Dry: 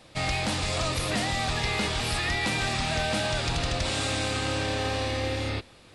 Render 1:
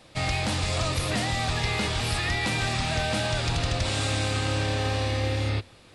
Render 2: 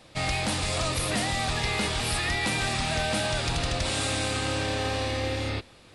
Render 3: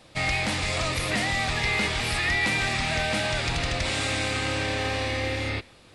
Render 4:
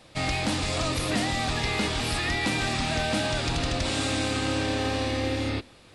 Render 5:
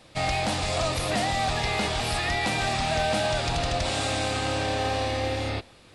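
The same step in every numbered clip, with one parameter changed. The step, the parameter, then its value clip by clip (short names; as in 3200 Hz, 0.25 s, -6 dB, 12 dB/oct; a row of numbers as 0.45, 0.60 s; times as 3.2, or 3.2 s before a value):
dynamic EQ, frequency: 100, 9800, 2100, 280, 710 Hz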